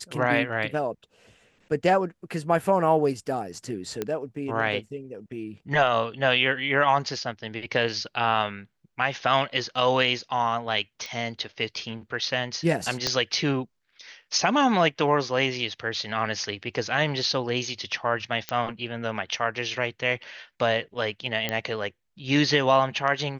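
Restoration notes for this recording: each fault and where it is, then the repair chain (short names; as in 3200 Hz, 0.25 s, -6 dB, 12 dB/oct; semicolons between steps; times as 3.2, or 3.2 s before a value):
4.02 pop -14 dBFS
11.06 pop -21 dBFS
13.07 pop -10 dBFS
18.49 pop -12 dBFS
21.49 pop -11 dBFS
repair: de-click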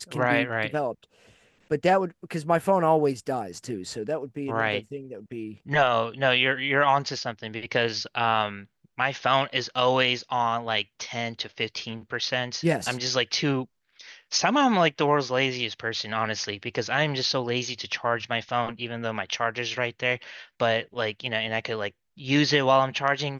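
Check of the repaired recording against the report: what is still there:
13.07 pop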